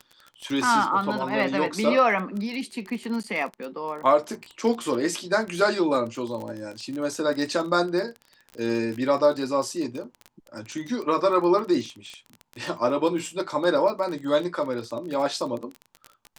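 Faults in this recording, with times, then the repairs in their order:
surface crackle 24 per second −30 dBFS
0:03.23–0:03.24: drop-out 9.6 ms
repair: click removal
repair the gap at 0:03.23, 9.6 ms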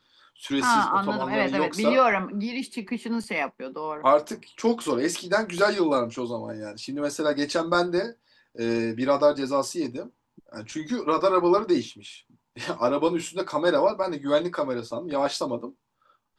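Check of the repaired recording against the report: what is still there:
none of them is left

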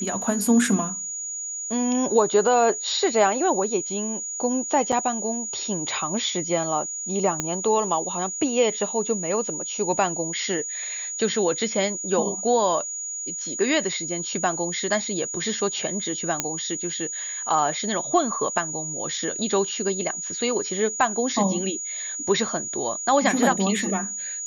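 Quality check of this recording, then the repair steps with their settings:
whistle 6,800 Hz −29 dBFS
0:04.92–0:04.93: drop-out 5.7 ms
0:07.40: click −9 dBFS
0:16.40: click −5 dBFS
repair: click removal
notch filter 6,800 Hz, Q 30
repair the gap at 0:04.92, 5.7 ms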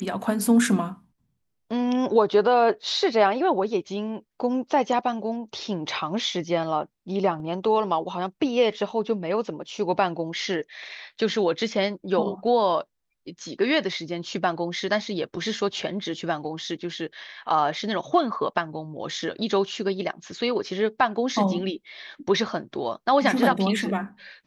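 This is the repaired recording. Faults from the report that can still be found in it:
0:07.40: click

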